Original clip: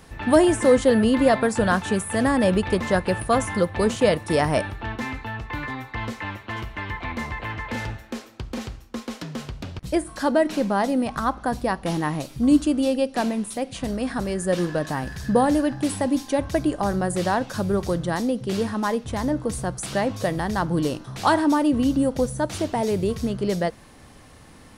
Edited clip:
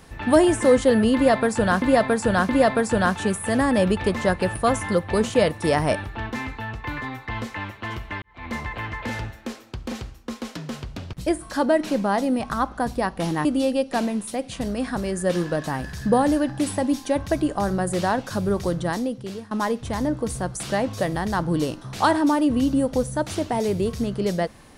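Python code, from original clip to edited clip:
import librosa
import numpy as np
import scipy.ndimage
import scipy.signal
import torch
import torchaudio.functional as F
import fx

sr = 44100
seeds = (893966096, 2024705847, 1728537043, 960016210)

y = fx.edit(x, sr, fx.repeat(start_s=1.15, length_s=0.67, count=3),
    fx.fade_in_span(start_s=6.88, length_s=0.3, curve='qua'),
    fx.cut(start_s=12.11, length_s=0.57),
    fx.fade_out_to(start_s=18.12, length_s=0.62, floor_db=-19.5), tone=tone)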